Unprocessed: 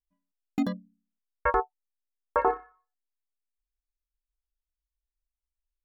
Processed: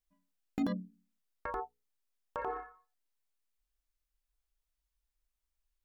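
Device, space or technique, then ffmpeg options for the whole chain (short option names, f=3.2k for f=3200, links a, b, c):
de-esser from a sidechain: -filter_complex "[0:a]asplit=2[a][b];[b]highpass=f=5.2k:p=1,apad=whole_len=257600[c];[a][c]sidechaincompress=threshold=-54dB:ratio=10:attack=3.2:release=27,bandreject=f=60:t=h:w=6,bandreject=f=120:t=h:w=6,bandreject=f=180:t=h:w=6,bandreject=f=240:t=h:w=6,bandreject=f=300:t=h:w=6,bandreject=f=360:t=h:w=6,bandreject=f=420:t=h:w=6,bandreject=f=480:t=h:w=6,volume=4dB"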